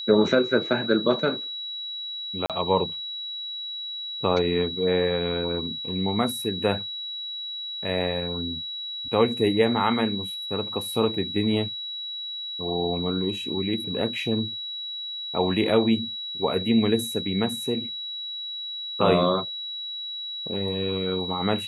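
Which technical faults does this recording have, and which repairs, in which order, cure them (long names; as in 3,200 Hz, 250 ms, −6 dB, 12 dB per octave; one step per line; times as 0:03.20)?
whistle 3,900 Hz −31 dBFS
0:02.46–0:02.50: drop-out 37 ms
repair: notch filter 3,900 Hz, Q 30
repair the gap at 0:02.46, 37 ms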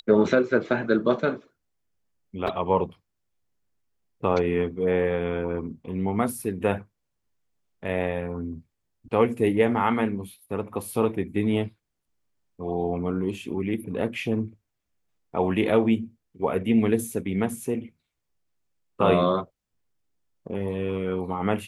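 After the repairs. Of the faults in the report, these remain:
none of them is left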